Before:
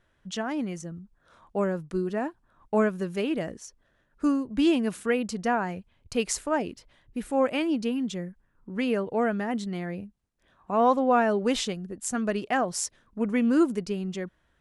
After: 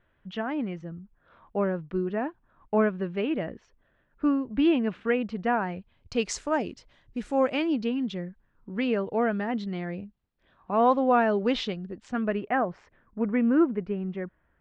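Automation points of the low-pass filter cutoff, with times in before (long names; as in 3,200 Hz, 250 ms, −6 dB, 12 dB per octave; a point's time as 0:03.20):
low-pass filter 24 dB per octave
0:05.47 3,100 Hz
0:06.36 6,800 Hz
0:07.41 6,800 Hz
0:07.82 4,300 Hz
0:11.92 4,300 Hz
0:12.52 2,200 Hz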